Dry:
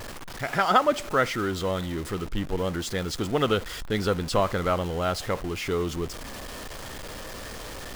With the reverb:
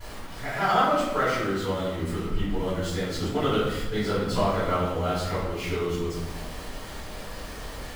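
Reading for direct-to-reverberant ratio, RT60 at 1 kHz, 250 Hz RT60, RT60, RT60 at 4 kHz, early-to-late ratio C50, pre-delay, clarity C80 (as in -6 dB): -15.0 dB, 0.90 s, 1.4 s, 1.0 s, 0.70 s, 0.5 dB, 3 ms, 3.0 dB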